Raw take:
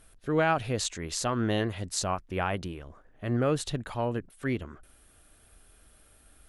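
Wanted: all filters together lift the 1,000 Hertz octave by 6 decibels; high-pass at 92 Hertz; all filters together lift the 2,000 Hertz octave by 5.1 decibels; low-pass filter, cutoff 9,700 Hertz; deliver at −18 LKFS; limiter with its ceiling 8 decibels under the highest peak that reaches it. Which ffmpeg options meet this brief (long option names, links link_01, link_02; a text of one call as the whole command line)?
ffmpeg -i in.wav -af "highpass=92,lowpass=9700,equalizer=frequency=1000:width_type=o:gain=7,equalizer=frequency=2000:width_type=o:gain=4,volume=12dB,alimiter=limit=-3.5dB:level=0:latency=1" out.wav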